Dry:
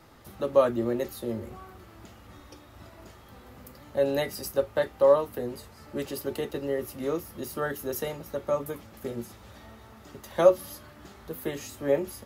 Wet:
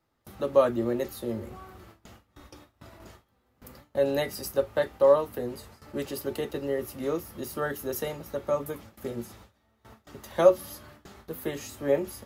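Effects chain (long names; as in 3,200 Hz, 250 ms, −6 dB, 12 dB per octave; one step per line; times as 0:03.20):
noise gate with hold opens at −38 dBFS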